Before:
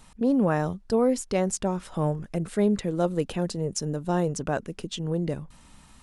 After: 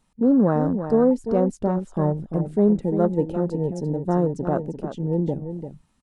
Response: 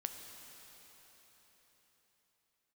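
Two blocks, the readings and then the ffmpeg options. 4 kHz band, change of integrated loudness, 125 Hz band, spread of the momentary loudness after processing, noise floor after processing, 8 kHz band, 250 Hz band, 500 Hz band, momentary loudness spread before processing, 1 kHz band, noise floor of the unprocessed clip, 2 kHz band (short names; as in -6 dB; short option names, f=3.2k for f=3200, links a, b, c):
under -15 dB, +4.5 dB, +4.5 dB, 9 LU, -65 dBFS, under -15 dB, +5.5 dB, +4.5 dB, 8 LU, +2.5 dB, -53 dBFS, n/a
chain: -af "equalizer=f=280:w=0.56:g=5.5,aecho=1:1:345:0.355,afwtdn=0.0282"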